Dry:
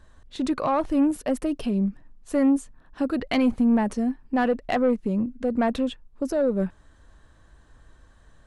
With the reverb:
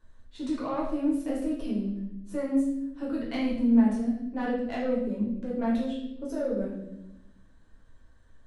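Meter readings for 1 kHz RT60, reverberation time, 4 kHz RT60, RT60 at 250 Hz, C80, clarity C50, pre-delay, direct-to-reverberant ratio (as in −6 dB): 0.65 s, 0.85 s, 0.75 s, 1.5 s, 6.5 dB, 3.0 dB, 6 ms, −6.0 dB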